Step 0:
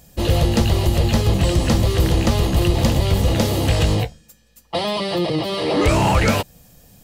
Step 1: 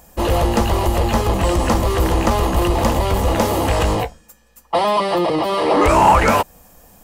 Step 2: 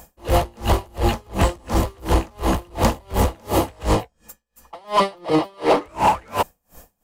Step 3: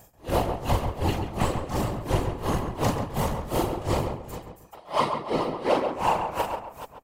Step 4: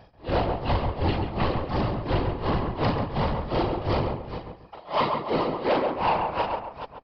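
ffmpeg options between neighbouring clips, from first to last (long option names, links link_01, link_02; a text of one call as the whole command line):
ffmpeg -i in.wav -filter_complex "[0:a]asplit=2[link_01][link_02];[link_02]acontrast=79,volume=2dB[link_03];[link_01][link_03]amix=inputs=2:normalize=0,equalizer=frequency=125:width_type=o:width=1:gain=-11,equalizer=frequency=1000:width_type=o:width=1:gain=9,equalizer=frequency=4000:width_type=o:width=1:gain=-7,volume=-8.5dB" out.wav
ffmpeg -i in.wav -af "alimiter=limit=-8.5dB:level=0:latency=1:release=236,volume=14dB,asoftclip=hard,volume=-14dB,aeval=exprs='val(0)*pow(10,-34*(0.5-0.5*cos(2*PI*2.8*n/s))/20)':channel_layout=same,volume=4.5dB" out.wav
ffmpeg -i in.wav -filter_complex "[0:a]asplit=2[link_01][link_02];[link_02]aecho=0:1:40|133|428:0.596|0.126|0.282[link_03];[link_01][link_03]amix=inputs=2:normalize=0,afftfilt=real='hypot(re,im)*cos(2*PI*random(0))':imag='hypot(re,im)*sin(2*PI*random(1))':win_size=512:overlap=0.75,asplit=2[link_04][link_05];[link_05]adelay=137,lowpass=frequency=1700:poles=1,volume=-5.5dB,asplit=2[link_06][link_07];[link_07]adelay=137,lowpass=frequency=1700:poles=1,volume=0.29,asplit=2[link_08][link_09];[link_09]adelay=137,lowpass=frequency=1700:poles=1,volume=0.29,asplit=2[link_10][link_11];[link_11]adelay=137,lowpass=frequency=1700:poles=1,volume=0.29[link_12];[link_06][link_08][link_10][link_12]amix=inputs=4:normalize=0[link_13];[link_04][link_13]amix=inputs=2:normalize=0,volume=-2dB" out.wav
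ffmpeg -i in.wav -af "asoftclip=type=tanh:threshold=-19.5dB,aresample=11025,aresample=44100,volume=3dB" out.wav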